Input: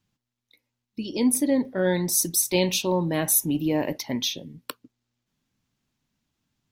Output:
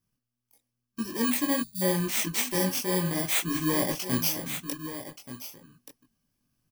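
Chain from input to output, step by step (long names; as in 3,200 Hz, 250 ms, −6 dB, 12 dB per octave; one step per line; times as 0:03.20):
samples in bit-reversed order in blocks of 32 samples
time-frequency box erased 0:01.61–0:01.82, 220–3,400 Hz
multi-voice chorus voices 6, 0.92 Hz, delay 21 ms, depth 4.6 ms
single-tap delay 1,179 ms −14 dB
speech leveller within 4 dB 0.5 s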